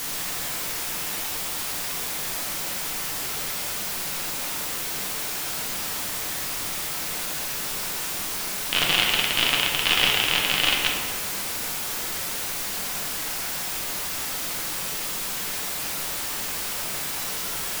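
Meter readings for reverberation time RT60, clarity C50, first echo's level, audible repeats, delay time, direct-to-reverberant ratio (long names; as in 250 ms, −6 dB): 1.9 s, 2.0 dB, no echo audible, no echo audible, no echo audible, −2.5 dB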